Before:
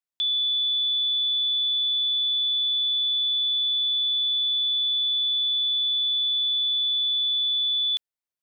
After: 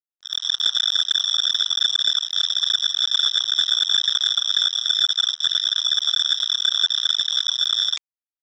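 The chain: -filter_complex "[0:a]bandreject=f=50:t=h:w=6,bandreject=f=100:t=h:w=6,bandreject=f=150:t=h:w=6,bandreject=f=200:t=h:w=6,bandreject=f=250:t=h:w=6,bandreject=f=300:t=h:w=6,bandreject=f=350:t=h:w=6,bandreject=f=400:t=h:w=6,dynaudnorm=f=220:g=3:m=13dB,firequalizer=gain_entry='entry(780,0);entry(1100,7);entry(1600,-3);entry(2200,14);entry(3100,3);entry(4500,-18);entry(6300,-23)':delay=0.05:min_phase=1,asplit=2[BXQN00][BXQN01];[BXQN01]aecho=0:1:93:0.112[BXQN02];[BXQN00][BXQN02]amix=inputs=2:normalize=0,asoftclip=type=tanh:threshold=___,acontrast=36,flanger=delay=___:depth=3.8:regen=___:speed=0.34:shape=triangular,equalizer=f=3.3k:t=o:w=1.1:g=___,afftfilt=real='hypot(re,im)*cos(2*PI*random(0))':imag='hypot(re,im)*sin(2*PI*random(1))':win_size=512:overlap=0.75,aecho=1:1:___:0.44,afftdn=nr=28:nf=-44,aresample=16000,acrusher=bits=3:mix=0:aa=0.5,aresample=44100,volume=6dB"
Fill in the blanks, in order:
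-12dB, 5.5, 88, -4.5, 2.5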